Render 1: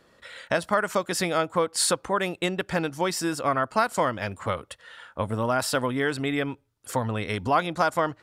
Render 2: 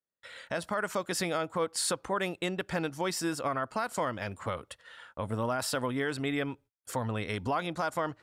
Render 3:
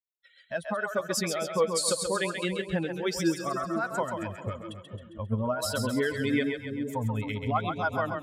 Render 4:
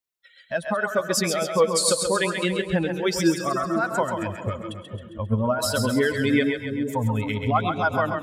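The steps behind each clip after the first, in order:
peak limiter -16 dBFS, peak gain reduction 6.5 dB; gate -49 dBFS, range -36 dB; trim -4.5 dB
expander on every frequency bin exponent 2; rotary cabinet horn 6.7 Hz; two-band feedback delay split 460 Hz, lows 465 ms, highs 134 ms, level -5.5 dB; trim +8.5 dB
reverberation RT60 0.45 s, pre-delay 98 ms, DRR 15.5 dB; trim +6 dB

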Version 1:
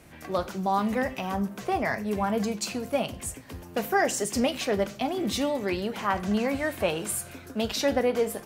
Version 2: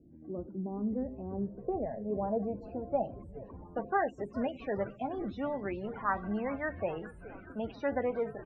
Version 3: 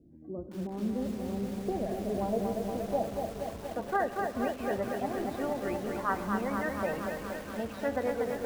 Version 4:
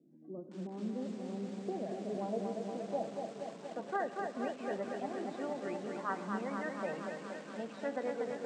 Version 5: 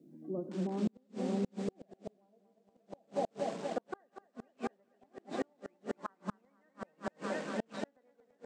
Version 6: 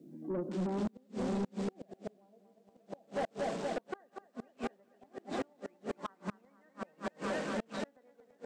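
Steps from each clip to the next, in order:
loudest bins only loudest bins 32; low-pass sweep 310 Hz -> 1.5 kHz, 0.59–4.50 s; frequency-shifting echo 417 ms, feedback 65%, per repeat -130 Hz, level -16 dB; trim -8.5 dB
on a send at -13.5 dB: reverberation RT60 2.7 s, pre-delay 48 ms; on the sum: bit-crushed delay 236 ms, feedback 80%, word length 8-bit, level -4 dB
Chebyshev band-pass 160–8100 Hz, order 4; trim -5.5 dB
inverted gate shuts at -30 dBFS, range -39 dB; trim +7 dB
saturation -35 dBFS, distortion -9 dB; trim +5 dB

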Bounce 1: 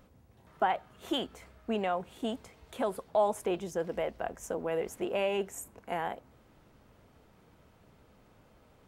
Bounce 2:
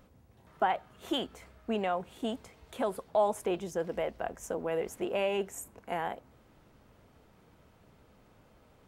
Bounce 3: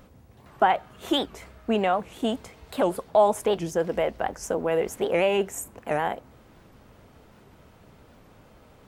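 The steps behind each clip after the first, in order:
no audible change
warped record 78 rpm, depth 250 cents; trim +8 dB

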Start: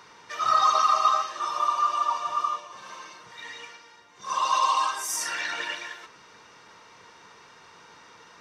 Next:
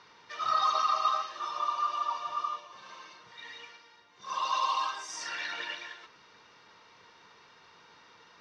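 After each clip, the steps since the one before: four-pole ladder low-pass 5.7 kHz, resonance 30%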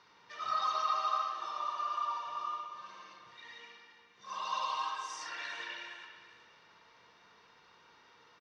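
feedback delay 403 ms, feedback 33%, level -16.5 dB; on a send at -2.5 dB: reverberation RT60 1.5 s, pre-delay 60 ms; on the sum: trim -6.5 dB

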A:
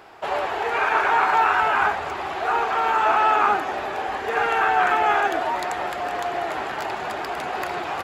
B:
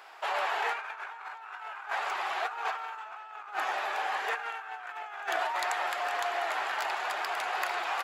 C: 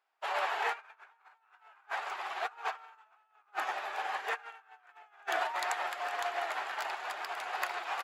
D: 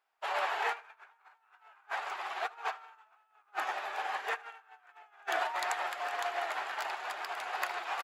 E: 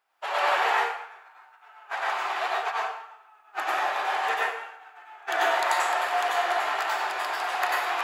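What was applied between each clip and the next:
high-pass 880 Hz 12 dB/octave; compressor with a negative ratio -28 dBFS, ratio -0.5; trim -5 dB
upward expansion 2.5:1, over -49 dBFS
feedback delay 77 ms, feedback 37%, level -23.5 dB
plate-style reverb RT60 0.65 s, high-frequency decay 0.85×, pre-delay 80 ms, DRR -4 dB; flange 0.73 Hz, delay 4 ms, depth 7.3 ms, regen -90%; trim +8.5 dB

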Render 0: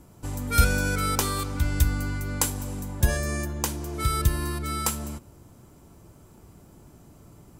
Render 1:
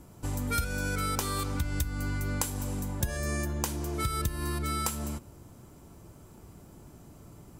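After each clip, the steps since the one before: compression 16:1, threshold -26 dBFS, peak gain reduction 15 dB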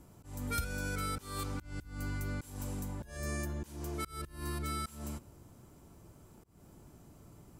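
slow attack 219 ms; trim -5.5 dB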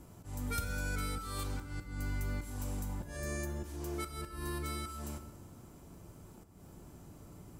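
in parallel at 0 dB: compression, threshold -44 dBFS, peak gain reduction 13.5 dB; on the sum: plate-style reverb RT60 1.3 s, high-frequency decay 0.8×, DRR 7.5 dB; trim -3.5 dB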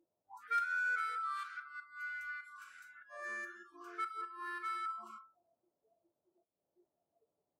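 auto-wah 500–1500 Hz, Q 3.4, up, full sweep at -35 dBFS; spectral noise reduction 30 dB; trim +9 dB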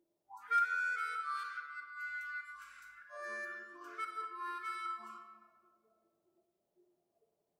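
simulated room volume 2200 m³, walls mixed, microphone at 1.3 m

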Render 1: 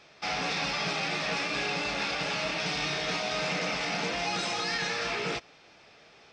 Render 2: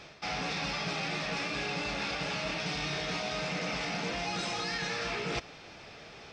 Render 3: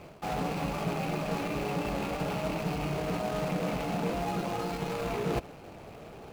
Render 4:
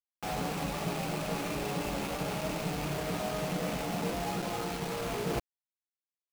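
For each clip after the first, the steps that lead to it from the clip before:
bass shelf 180 Hz +8.5 dB; reverse; compression 6:1, threshold -38 dBFS, peak gain reduction 11.5 dB; reverse; trim +6 dB
median filter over 25 samples; trim +6.5 dB
word length cut 6-bit, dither none; trim -2.5 dB

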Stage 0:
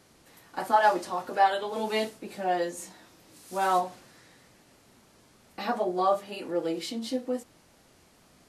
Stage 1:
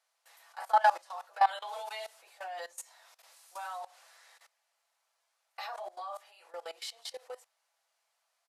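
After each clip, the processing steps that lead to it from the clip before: steep high-pass 640 Hz 36 dB/octave; comb 6 ms, depth 31%; level held to a coarse grid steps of 20 dB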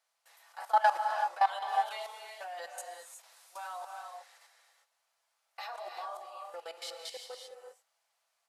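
gated-style reverb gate 400 ms rising, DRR 3.5 dB; trim -1.5 dB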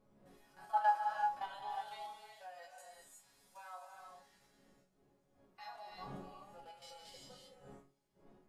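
wind noise 440 Hz -51 dBFS; harmonic-percussive split percussive -12 dB; chord resonator C#3 sus4, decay 0.25 s; trim +7 dB

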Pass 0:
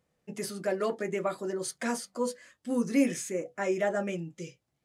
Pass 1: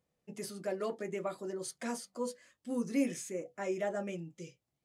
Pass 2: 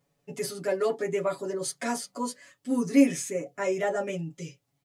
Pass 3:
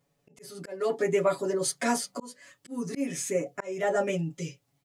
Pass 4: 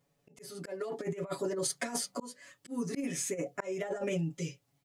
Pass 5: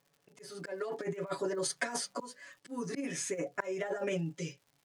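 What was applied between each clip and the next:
peaking EQ 1.6 kHz -3.5 dB 0.77 oct; trim -6 dB
comb 7.1 ms, depth 97%; trim +6 dB
level rider gain up to 3.5 dB; slow attack 364 ms
compressor with a negative ratio -29 dBFS, ratio -0.5; trim -4 dB
cabinet simulation 150–9700 Hz, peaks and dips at 230 Hz -5 dB, 1 kHz +3 dB, 1.6 kHz +6 dB, 7.5 kHz -4 dB; crackle 140 per s -54 dBFS

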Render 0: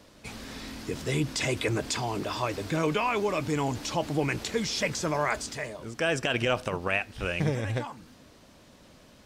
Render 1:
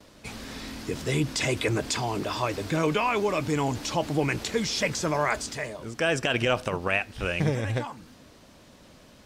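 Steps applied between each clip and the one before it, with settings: gate with hold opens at -48 dBFS; trim +2 dB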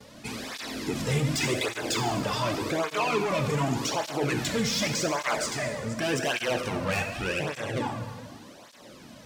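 saturation -27.5 dBFS, distortion -8 dB; plate-style reverb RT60 1.6 s, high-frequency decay 0.8×, DRR 3.5 dB; cancelling through-zero flanger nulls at 0.86 Hz, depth 3.2 ms; trim +6 dB

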